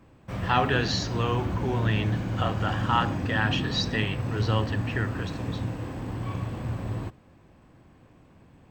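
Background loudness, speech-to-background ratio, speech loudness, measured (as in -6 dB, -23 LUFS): -31.5 LUFS, 3.0 dB, -28.5 LUFS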